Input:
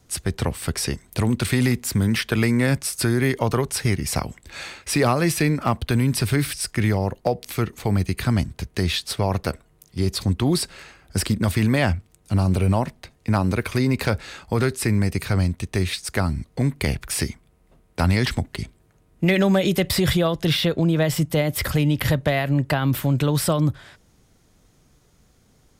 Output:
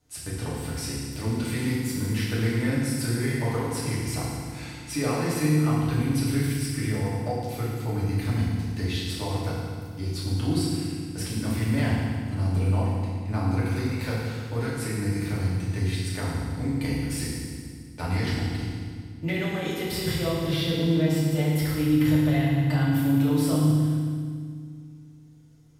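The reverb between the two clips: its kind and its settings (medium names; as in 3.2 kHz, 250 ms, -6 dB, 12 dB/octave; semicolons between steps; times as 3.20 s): FDN reverb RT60 1.9 s, low-frequency decay 1.6×, high-frequency decay 0.95×, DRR -7.5 dB; trim -15 dB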